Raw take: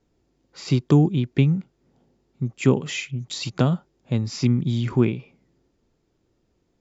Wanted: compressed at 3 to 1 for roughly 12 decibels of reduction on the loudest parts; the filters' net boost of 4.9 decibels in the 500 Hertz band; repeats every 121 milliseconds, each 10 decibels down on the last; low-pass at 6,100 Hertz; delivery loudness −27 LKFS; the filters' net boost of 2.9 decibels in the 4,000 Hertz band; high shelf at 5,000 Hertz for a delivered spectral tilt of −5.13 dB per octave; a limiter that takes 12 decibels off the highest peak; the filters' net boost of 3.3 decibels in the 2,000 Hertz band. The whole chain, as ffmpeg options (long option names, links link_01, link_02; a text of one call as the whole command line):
ffmpeg -i in.wav -af "lowpass=6100,equalizer=frequency=500:width_type=o:gain=6.5,equalizer=frequency=2000:width_type=o:gain=3,equalizer=frequency=4000:width_type=o:gain=5,highshelf=frequency=5000:gain=-3.5,acompressor=threshold=-26dB:ratio=3,alimiter=limit=-22dB:level=0:latency=1,aecho=1:1:121|242|363|484:0.316|0.101|0.0324|0.0104,volume=5dB" out.wav